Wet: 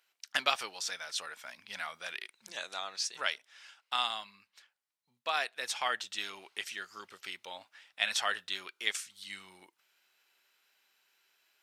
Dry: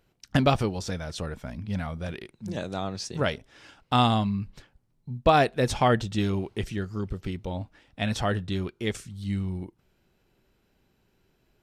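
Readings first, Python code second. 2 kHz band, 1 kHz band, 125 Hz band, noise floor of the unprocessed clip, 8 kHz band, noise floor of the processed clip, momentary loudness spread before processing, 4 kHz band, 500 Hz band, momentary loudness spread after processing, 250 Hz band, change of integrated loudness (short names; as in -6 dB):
-1.0 dB, -10.0 dB, under -40 dB, -70 dBFS, +2.0 dB, -82 dBFS, 15 LU, +0.5 dB, -17.0 dB, 15 LU, -30.0 dB, -7.5 dB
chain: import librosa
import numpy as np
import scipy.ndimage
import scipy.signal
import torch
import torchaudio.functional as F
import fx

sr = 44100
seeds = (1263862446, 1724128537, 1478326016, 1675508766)

y = scipy.signal.sosfilt(scipy.signal.butter(2, 1500.0, 'highpass', fs=sr, output='sos'), x)
y = fx.rider(y, sr, range_db=5, speed_s=2.0)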